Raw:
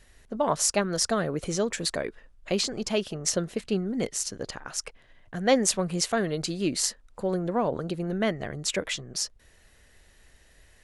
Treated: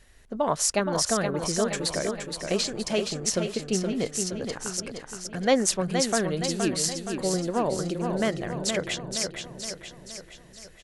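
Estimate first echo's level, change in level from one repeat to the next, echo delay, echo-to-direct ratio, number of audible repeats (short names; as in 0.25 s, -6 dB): -6.0 dB, -5.5 dB, 0.47 s, -4.5 dB, 6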